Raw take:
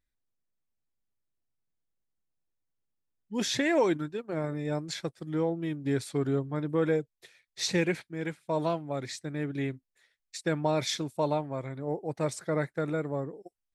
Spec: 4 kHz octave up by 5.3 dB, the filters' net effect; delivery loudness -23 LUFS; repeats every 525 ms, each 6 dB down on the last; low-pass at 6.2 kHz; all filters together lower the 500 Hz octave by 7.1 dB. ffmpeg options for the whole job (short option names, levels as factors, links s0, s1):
-af "lowpass=6200,equalizer=f=500:t=o:g=-9,equalizer=f=4000:t=o:g=7,aecho=1:1:525|1050|1575|2100|2625|3150:0.501|0.251|0.125|0.0626|0.0313|0.0157,volume=2.82"